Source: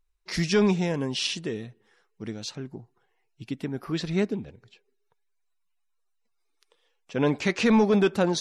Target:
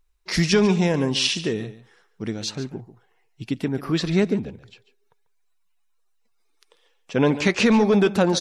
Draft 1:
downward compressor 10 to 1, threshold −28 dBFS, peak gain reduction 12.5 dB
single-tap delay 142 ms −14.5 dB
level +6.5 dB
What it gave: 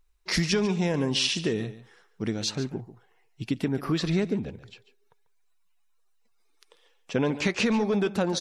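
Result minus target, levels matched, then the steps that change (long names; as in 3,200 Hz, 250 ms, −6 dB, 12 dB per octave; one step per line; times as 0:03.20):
downward compressor: peak gain reduction +7.5 dB
change: downward compressor 10 to 1, threshold −19.5 dBFS, peak gain reduction 4.5 dB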